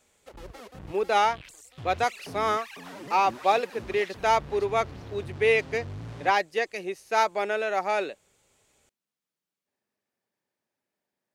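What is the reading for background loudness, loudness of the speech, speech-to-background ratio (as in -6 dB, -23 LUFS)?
-43.0 LUFS, -26.5 LUFS, 16.5 dB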